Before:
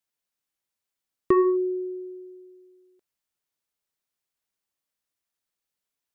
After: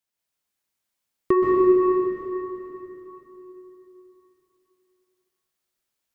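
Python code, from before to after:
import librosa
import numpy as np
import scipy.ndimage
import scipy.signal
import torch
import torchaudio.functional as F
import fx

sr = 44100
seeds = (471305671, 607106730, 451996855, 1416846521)

y = fx.rev_plate(x, sr, seeds[0], rt60_s=3.6, hf_ratio=0.9, predelay_ms=115, drr_db=-4.0)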